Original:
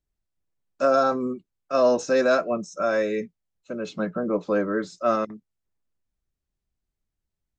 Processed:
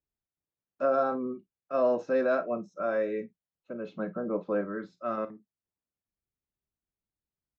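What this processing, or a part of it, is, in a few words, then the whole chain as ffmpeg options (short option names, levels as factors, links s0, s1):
phone in a pocket: -filter_complex "[0:a]highpass=f=120:p=1,asettb=1/sr,asplit=3[s0][s1][s2];[s0]atrim=end=4.614[s3];[s1]atrim=start=4.61:end=5.18,asetpts=PTS-STARTPTS,afade=t=in:d=0.004:c=qsin,afade=t=out:st=0.566:d=0.004:c=qsin,equalizer=f=520:t=o:w=2:g=-5.5[s4];[s2]atrim=start=5.176[s5];[s3][s4]acrossfade=d=0.004:c1=hsin:c2=qsin[s6];[s6][s5]acrossfade=d=0.004:c1=qsin:c2=hsin,lowpass=3100,highshelf=f=2500:g=-9,aecho=1:1:35|50:0.178|0.141,volume=0.531"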